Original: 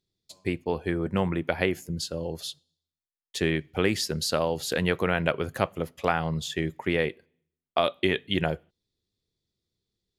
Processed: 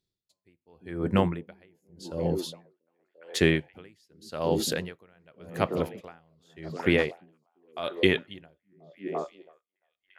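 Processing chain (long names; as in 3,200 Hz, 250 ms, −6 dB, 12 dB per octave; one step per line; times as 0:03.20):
echo through a band-pass that steps 345 ms, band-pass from 200 Hz, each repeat 0.7 octaves, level −3.5 dB
automatic gain control gain up to 6 dB
tremolo with a sine in dB 0.87 Hz, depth 39 dB
level −1.5 dB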